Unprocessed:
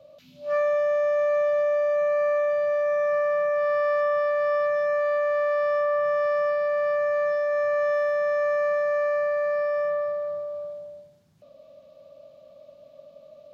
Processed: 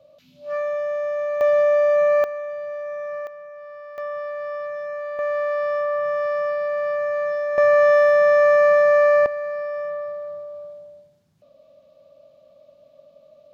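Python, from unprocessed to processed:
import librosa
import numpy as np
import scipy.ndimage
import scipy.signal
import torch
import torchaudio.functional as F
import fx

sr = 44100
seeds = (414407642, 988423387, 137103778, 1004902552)

y = fx.gain(x, sr, db=fx.steps((0.0, -2.0), (1.41, 6.0), (2.24, -6.5), (3.27, -15.5), (3.98, -6.0), (5.19, 0.5), (7.58, 9.0), (9.26, -2.5)))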